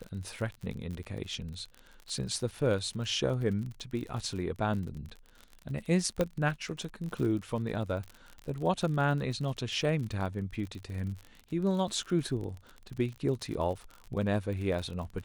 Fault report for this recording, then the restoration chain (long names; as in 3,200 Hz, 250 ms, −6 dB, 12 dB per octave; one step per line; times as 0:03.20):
surface crackle 43 per second −37 dBFS
0:06.21: click −15 dBFS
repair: click removal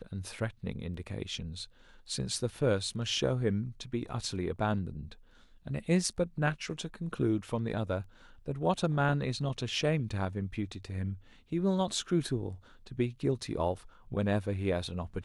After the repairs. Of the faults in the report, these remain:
none of them is left